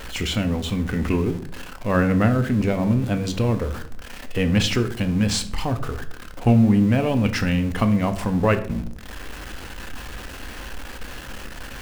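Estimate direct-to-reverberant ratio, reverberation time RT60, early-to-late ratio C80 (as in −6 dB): 7.5 dB, 0.60 s, 17.5 dB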